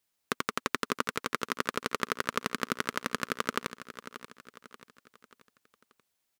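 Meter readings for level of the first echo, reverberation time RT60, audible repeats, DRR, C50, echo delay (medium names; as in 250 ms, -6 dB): -13.0 dB, no reverb, 4, no reverb, no reverb, 584 ms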